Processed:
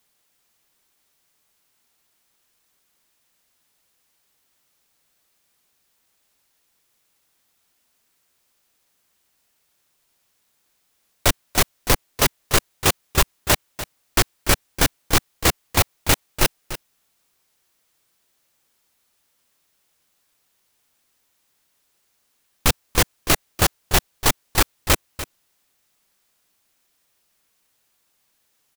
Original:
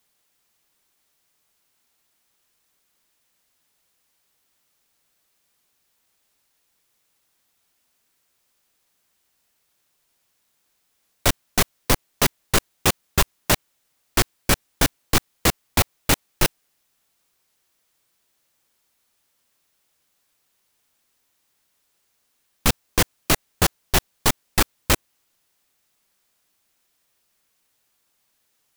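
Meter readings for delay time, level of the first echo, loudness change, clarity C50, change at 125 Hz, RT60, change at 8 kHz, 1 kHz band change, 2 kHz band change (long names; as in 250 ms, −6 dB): 293 ms, −13.5 dB, +1.0 dB, no reverb audible, +1.0 dB, no reverb audible, +1.5 dB, +1.5 dB, +1.5 dB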